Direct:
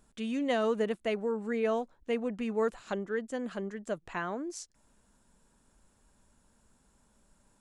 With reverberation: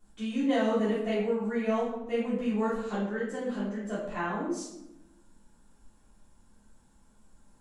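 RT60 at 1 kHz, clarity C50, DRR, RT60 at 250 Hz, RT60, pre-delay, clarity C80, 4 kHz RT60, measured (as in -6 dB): 0.85 s, 1.5 dB, -11.5 dB, 1.3 s, 0.90 s, 3 ms, 5.0 dB, 0.55 s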